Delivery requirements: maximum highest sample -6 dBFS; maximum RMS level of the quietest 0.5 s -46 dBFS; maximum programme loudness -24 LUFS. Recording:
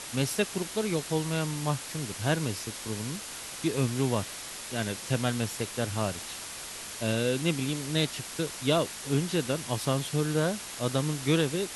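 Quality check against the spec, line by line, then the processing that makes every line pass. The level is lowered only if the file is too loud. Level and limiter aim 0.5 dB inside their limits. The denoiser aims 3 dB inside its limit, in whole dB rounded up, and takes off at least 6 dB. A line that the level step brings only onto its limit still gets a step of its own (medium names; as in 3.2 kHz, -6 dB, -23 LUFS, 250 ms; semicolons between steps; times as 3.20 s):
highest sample -11.0 dBFS: pass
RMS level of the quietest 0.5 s -40 dBFS: fail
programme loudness -30.0 LUFS: pass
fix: noise reduction 9 dB, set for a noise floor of -40 dBFS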